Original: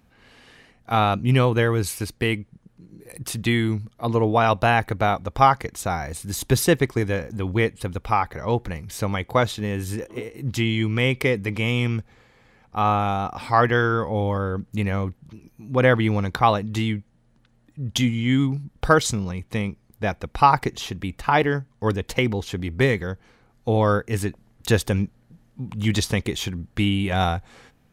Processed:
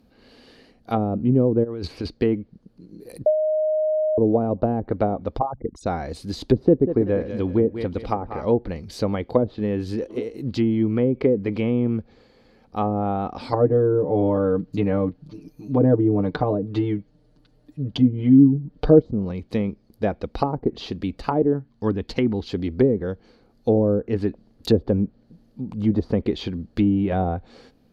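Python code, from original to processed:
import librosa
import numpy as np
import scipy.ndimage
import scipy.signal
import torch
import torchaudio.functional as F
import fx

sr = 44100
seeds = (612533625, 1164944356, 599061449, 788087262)

y = fx.over_compress(x, sr, threshold_db=-30.0, ratio=-1.0, at=(1.63, 2.07), fade=0.02)
y = fx.envelope_sharpen(y, sr, power=3.0, at=(5.37, 5.85), fade=0.02)
y = fx.echo_feedback(y, sr, ms=190, feedback_pct=33, wet_db=-12, at=(6.63, 8.45))
y = fx.comb(y, sr, ms=6.7, depth=0.92, at=(13.52, 19.02))
y = fx.peak_eq(y, sr, hz=520.0, db=-8.0, octaves=0.77, at=(21.53, 22.51))
y = fx.peak_eq(y, sr, hz=3300.0, db=-9.0, octaves=1.3, at=(25.61, 26.14))
y = fx.edit(y, sr, fx.bleep(start_s=3.26, length_s=0.92, hz=620.0, db=-14.0), tone=tone)
y = fx.peak_eq(y, sr, hz=4500.0, db=10.5, octaves=0.29)
y = fx.env_lowpass_down(y, sr, base_hz=450.0, full_db=-15.0)
y = fx.graphic_eq_10(y, sr, hz=(125, 250, 500, 1000, 2000, 8000), db=(-5, 6, 5, -4, -6, -8))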